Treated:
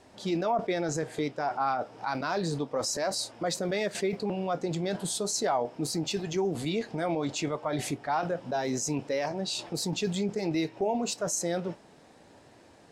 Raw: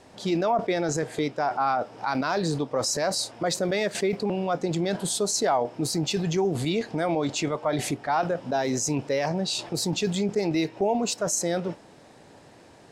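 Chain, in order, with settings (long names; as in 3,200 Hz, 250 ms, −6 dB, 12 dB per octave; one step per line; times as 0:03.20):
flanger 0.32 Hz, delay 2.8 ms, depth 5 ms, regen −71%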